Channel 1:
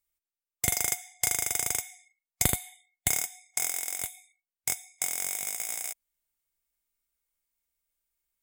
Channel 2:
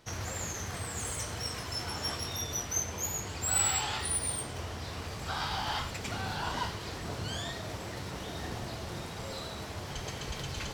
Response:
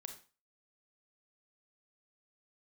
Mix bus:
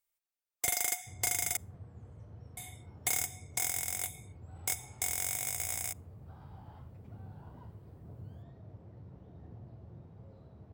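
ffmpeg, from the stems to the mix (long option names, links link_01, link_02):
-filter_complex "[0:a]lowshelf=frequency=390:gain=-8.5,asoftclip=type=hard:threshold=-21.5dB,volume=-2.5dB,asplit=3[link_01][link_02][link_03];[link_01]atrim=end=1.57,asetpts=PTS-STARTPTS,afade=type=out:start_time=1.566:duration=0.004:curve=hsin[link_04];[link_02]atrim=start=1.57:end=2.57,asetpts=PTS-STARTPTS,volume=0[link_05];[link_03]atrim=start=2.57,asetpts=PTS-STARTPTS,afade=type=in:duration=0.004:curve=hsin[link_06];[link_04][link_05][link_06]concat=n=3:v=0:a=1,asplit=2[link_07][link_08];[link_08]volume=-20dB[link_09];[1:a]bandpass=frequency=110:width_type=q:width=1.3:csg=0,adelay=1000,volume=-7dB[link_10];[2:a]atrim=start_sample=2205[link_11];[link_09][link_11]afir=irnorm=-1:irlink=0[link_12];[link_07][link_10][link_12]amix=inputs=3:normalize=0,equalizer=frequency=620:width=0.7:gain=5.5"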